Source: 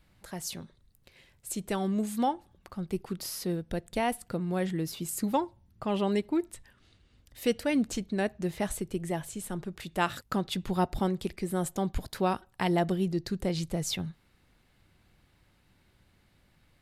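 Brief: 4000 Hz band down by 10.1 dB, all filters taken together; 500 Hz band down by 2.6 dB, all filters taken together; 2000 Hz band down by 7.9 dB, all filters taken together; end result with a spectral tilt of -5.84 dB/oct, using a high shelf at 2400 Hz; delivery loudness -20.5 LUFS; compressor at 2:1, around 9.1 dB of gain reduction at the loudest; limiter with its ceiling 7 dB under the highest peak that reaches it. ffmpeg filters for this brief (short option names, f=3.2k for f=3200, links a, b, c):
-af "equalizer=f=500:t=o:g=-3,equalizer=f=2k:t=o:g=-6,highshelf=f=2.4k:g=-5,equalizer=f=4k:t=o:g=-6.5,acompressor=threshold=-40dB:ratio=2,volume=22dB,alimiter=limit=-9.5dB:level=0:latency=1"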